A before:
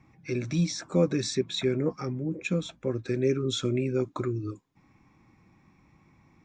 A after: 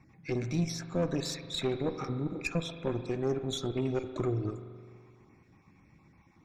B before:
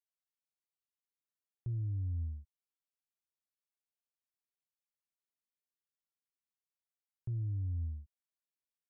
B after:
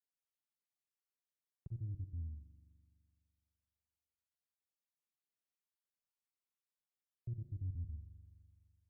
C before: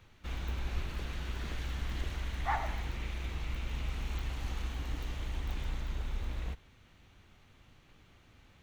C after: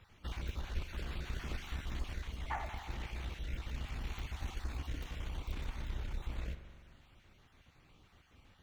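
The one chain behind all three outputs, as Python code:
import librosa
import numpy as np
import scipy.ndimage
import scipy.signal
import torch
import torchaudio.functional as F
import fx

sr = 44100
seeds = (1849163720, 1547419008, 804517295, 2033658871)

y = fx.spec_dropout(x, sr, seeds[0], share_pct=23)
y = fx.rider(y, sr, range_db=3, speed_s=0.5)
y = fx.tube_stage(y, sr, drive_db=23.0, bias=0.6)
y = fx.rev_spring(y, sr, rt60_s=2.1, pass_ms=(42,), chirp_ms=40, drr_db=9.0)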